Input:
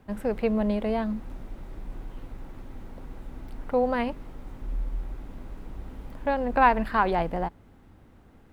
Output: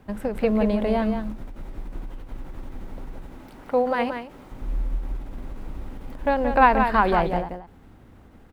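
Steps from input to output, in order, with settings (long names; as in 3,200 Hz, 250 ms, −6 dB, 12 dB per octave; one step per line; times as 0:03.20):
0:03.26–0:04.52: high-pass filter 250 Hz 6 dB per octave
single-tap delay 177 ms −7 dB
every ending faded ahead of time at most 110 dB per second
level +4 dB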